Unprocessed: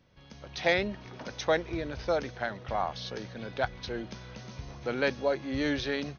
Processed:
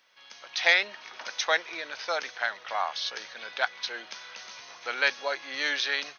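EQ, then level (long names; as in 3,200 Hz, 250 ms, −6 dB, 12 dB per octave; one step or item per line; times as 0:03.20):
high-pass filter 1,200 Hz 12 dB per octave
+8.5 dB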